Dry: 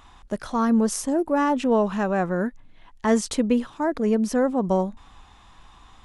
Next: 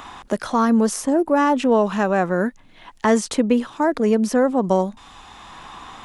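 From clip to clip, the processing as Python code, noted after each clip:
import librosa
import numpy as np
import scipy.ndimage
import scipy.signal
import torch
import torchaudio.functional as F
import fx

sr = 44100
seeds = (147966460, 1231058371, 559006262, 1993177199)

y = fx.low_shelf(x, sr, hz=110.0, db=-11.5)
y = fx.band_squash(y, sr, depth_pct=40)
y = F.gain(torch.from_numpy(y), 5.0).numpy()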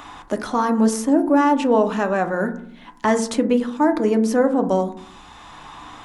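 y = fx.rev_fdn(x, sr, rt60_s=0.61, lf_ratio=1.55, hf_ratio=0.3, size_ms=20.0, drr_db=6.5)
y = F.gain(torch.from_numpy(y), -1.5).numpy()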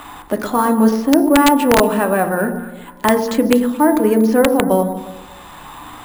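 y = fx.echo_alternate(x, sr, ms=118, hz=860.0, feedback_pct=56, wet_db=-9)
y = (np.mod(10.0 ** (6.5 / 20.0) * y + 1.0, 2.0) - 1.0) / 10.0 ** (6.5 / 20.0)
y = np.repeat(scipy.signal.resample_poly(y, 1, 4), 4)[:len(y)]
y = F.gain(torch.from_numpy(y), 4.0).numpy()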